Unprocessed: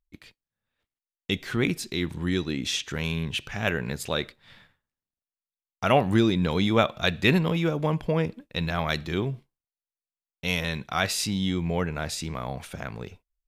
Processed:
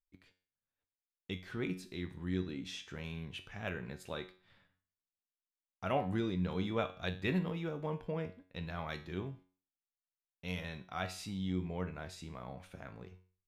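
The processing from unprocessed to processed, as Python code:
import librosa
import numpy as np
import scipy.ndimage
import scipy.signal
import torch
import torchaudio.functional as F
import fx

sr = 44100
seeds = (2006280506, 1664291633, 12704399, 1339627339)

y = fx.high_shelf(x, sr, hz=3300.0, db=-8.5)
y = fx.comb_fb(y, sr, f0_hz=92.0, decay_s=0.42, harmonics='all', damping=0.0, mix_pct=70)
y = y * 10.0 ** (-5.5 / 20.0)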